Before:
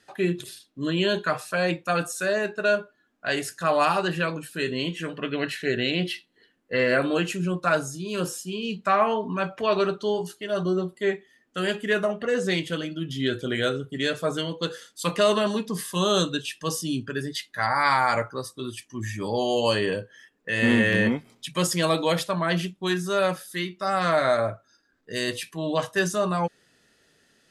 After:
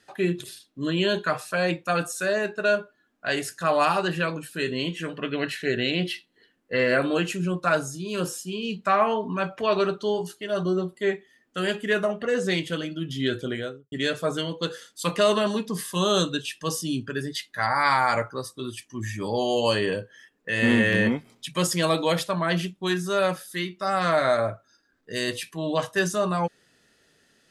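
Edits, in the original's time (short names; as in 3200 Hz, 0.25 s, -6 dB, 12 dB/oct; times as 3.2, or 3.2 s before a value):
13.36–13.92 studio fade out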